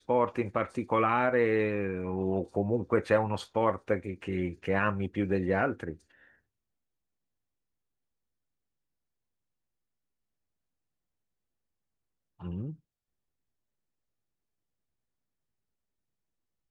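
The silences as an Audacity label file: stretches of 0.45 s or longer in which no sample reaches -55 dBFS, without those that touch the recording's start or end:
6.300000	12.400000	silence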